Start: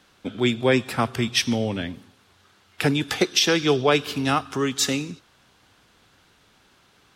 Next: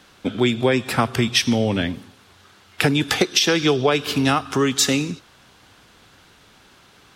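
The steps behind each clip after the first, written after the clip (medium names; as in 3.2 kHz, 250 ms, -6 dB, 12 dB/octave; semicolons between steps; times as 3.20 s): compression 6:1, threshold -21 dBFS, peak gain reduction 8 dB; trim +7 dB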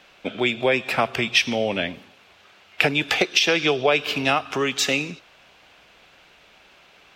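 fifteen-band graphic EQ 100 Hz -11 dB, 250 Hz -4 dB, 630 Hz +8 dB, 2.5 kHz +10 dB, 10 kHz -8 dB; trim -4.5 dB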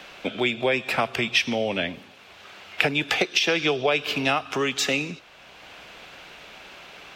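three bands compressed up and down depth 40%; trim -2 dB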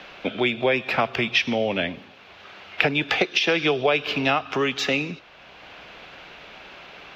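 boxcar filter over 5 samples; trim +2 dB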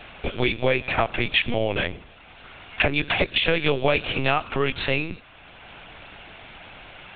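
LPC vocoder at 8 kHz pitch kept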